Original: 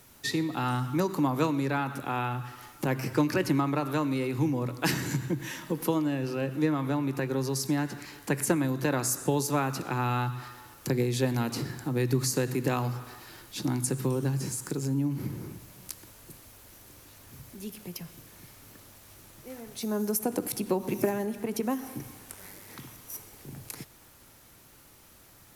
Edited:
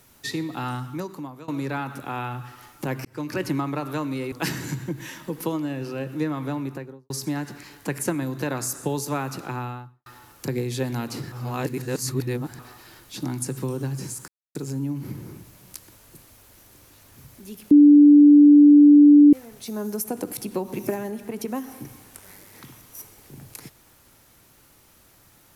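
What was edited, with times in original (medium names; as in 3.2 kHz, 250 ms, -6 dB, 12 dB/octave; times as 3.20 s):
0.62–1.48 s: fade out, to -21.5 dB
3.05–3.40 s: fade in
4.32–4.74 s: delete
6.99–7.52 s: studio fade out
9.85–10.48 s: studio fade out
11.74–13.01 s: reverse
14.70 s: insert silence 0.27 s
17.86–19.48 s: bleep 292 Hz -7.5 dBFS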